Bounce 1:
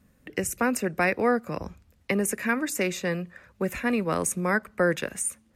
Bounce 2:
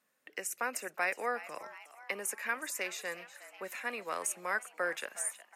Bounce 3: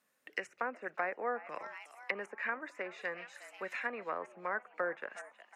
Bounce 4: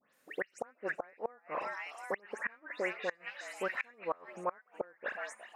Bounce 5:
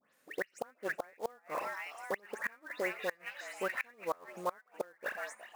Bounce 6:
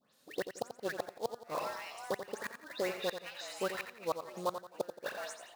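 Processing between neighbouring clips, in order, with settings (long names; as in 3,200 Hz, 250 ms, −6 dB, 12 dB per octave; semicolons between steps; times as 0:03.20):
high-pass filter 680 Hz 12 dB per octave; echo with shifted repeats 365 ms, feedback 57%, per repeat +130 Hz, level −15.5 dB; level −6.5 dB
treble cut that deepens with the level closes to 1,000 Hz, closed at −33 dBFS; dynamic equaliser 1,800 Hz, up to +5 dB, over −51 dBFS, Q 1.3
all-pass dispersion highs, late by 140 ms, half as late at 2,900 Hz; gate with flip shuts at −29 dBFS, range −28 dB; level +6.5 dB
floating-point word with a short mantissa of 2 bits
octave-band graphic EQ 125/2,000/4,000 Hz +7/−11/+11 dB; on a send: repeating echo 87 ms, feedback 35%, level −9 dB; on the sum: level +1.5 dB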